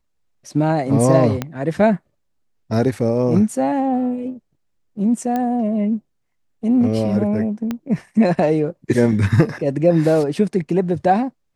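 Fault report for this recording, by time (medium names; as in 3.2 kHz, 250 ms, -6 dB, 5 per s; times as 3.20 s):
1.42 s: pop -8 dBFS
5.36 s: pop -11 dBFS
7.71 s: pop -11 dBFS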